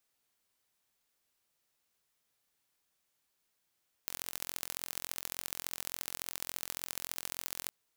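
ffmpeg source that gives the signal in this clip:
-f lavfi -i "aevalsrc='0.376*eq(mod(n,1014),0)*(0.5+0.5*eq(mod(n,3042),0))':d=3.63:s=44100"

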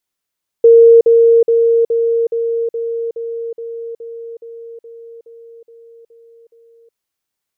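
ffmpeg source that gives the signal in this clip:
-f lavfi -i "aevalsrc='pow(10,(-2.5-3*floor(t/0.42))/20)*sin(2*PI*462*t)*clip(min(mod(t,0.42),0.37-mod(t,0.42))/0.005,0,1)':d=6.3:s=44100"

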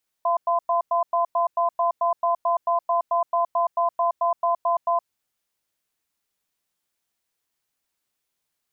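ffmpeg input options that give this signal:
-f lavfi -i "aevalsrc='0.0891*(sin(2*PI*686*t)+sin(2*PI*1020*t))*clip(min(mod(t,0.22),0.12-mod(t,0.22))/0.005,0,1)':d=4.76:s=44100"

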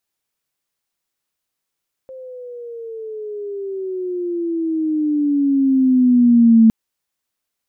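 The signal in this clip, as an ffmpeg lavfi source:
-f lavfi -i "aevalsrc='pow(10,(-6+26*(t/4.61-1))/20)*sin(2*PI*527*4.61/(-15*log(2)/12)*(exp(-15*log(2)/12*t/4.61)-1))':d=4.61:s=44100"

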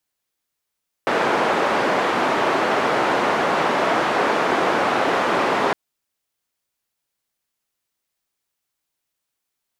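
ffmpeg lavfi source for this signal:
-f lavfi -i "anoisesrc=c=white:d=4.66:r=44100:seed=1,highpass=f=280,lowpass=f=1100,volume=-0.9dB"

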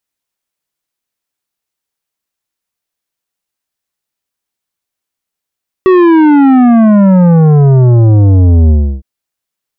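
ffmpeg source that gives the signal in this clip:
-f lavfi -i "aevalsrc='0.631*clip((3.16-t)/0.32,0,1)*tanh(3.55*sin(2*PI*380*3.16/log(65/380)*(exp(log(65/380)*t/3.16)-1)))/tanh(3.55)':d=3.16:s=44100"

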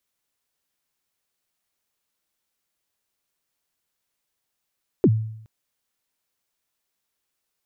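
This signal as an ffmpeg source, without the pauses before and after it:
-f lavfi -i "aevalsrc='0.316*pow(10,-3*t/0.72)*sin(2*PI*(450*0.053/log(110/450)*(exp(log(110/450)*min(t,0.053)/0.053)-1)+110*max(t-0.053,0)))':d=0.42:s=44100"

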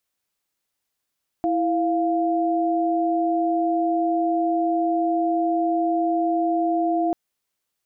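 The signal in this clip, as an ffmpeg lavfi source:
-f lavfi -i "aevalsrc='0.0841*(sin(2*PI*329.63*t)+sin(2*PI*698.46*t))':d=5.69:s=44100"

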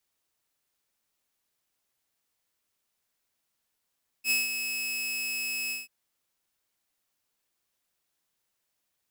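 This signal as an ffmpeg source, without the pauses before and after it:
-f lavfi -i "aevalsrc='0.106*(2*mod(2580*t,1)-1)':d=1.636:s=44100,afade=t=in:d=0.065,afade=t=out:st=0.065:d=0.17:silence=0.398,afade=t=out:st=1.47:d=0.166"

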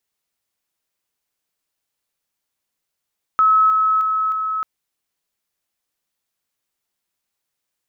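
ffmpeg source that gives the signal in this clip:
-f lavfi -i "aevalsrc='pow(10,(-10.5-3*floor(t/0.31))/20)*sin(2*PI*1290*t)':d=1.24:s=44100"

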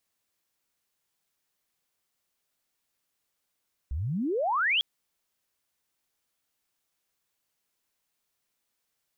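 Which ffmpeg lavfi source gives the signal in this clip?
-f lavfi -i "aevalsrc='pow(10,(-28.5+7*t/0.9)/20)*sin(2*PI*61*0.9/log(3400/61)*(exp(log(3400/61)*t/0.9)-1))':d=0.9:s=44100"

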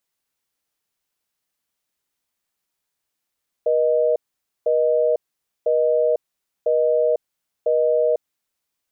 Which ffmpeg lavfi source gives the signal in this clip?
-f lavfi -i "aevalsrc='0.126*(sin(2*PI*480*t)+sin(2*PI*620*t))*clip(min(mod(t,1),0.5-mod(t,1))/0.005,0,1)':d=4.66:s=44100"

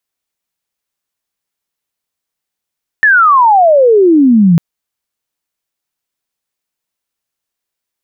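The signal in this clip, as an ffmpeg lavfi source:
-f lavfi -i "aevalsrc='pow(10,(-4+0.5*t/1.55)/20)*sin(2*PI*1800*1.55/log(160/1800)*(exp(log(160/1800)*t/1.55)-1))':d=1.55:s=44100"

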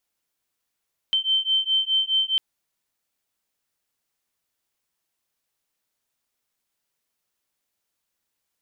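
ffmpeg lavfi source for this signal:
-f lavfi -i "aevalsrc='0.075*(sin(2*PI*3100*t)+sin(2*PI*3104.8*t))':d=1.25:s=44100"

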